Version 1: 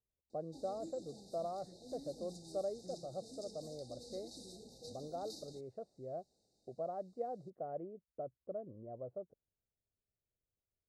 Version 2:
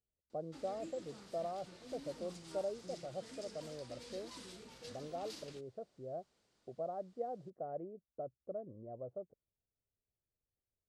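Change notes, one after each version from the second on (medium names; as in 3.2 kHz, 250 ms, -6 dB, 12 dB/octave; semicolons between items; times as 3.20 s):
background: remove brick-wall FIR band-stop 860–3600 Hz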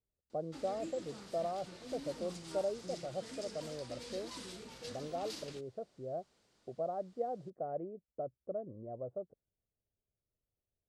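speech +3.5 dB; background +4.5 dB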